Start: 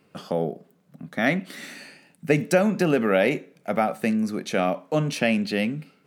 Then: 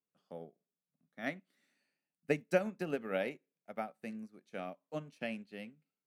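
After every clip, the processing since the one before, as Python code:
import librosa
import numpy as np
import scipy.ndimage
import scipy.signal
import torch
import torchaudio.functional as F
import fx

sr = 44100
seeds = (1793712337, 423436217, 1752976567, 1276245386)

y = fx.low_shelf(x, sr, hz=67.0, db=-8.5)
y = fx.upward_expand(y, sr, threshold_db=-34.0, expansion=2.5)
y = y * 10.0 ** (-8.5 / 20.0)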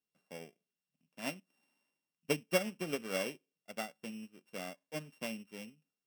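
y = np.r_[np.sort(x[:len(x) // 16 * 16].reshape(-1, 16), axis=1).ravel(), x[len(x) // 16 * 16:]]
y = y * 10.0 ** (-1.0 / 20.0)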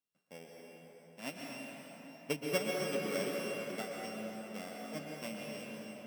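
y = fx.rev_plate(x, sr, seeds[0], rt60_s=4.8, hf_ratio=0.6, predelay_ms=110, drr_db=-2.5)
y = y * 10.0 ** (-3.5 / 20.0)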